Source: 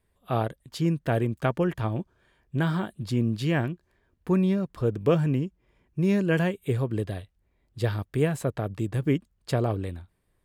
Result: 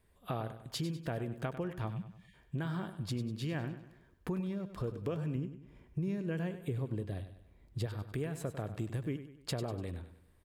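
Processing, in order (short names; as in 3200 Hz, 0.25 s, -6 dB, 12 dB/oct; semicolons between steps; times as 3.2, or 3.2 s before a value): 1.9–2.34 spectral delete 220–1700 Hz; 5.35–7.86 low shelf 410 Hz +6 dB; compressor 5:1, threshold -38 dBFS, peak gain reduction 20 dB; feedback echo 98 ms, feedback 44%, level -11.5 dB; gain +2 dB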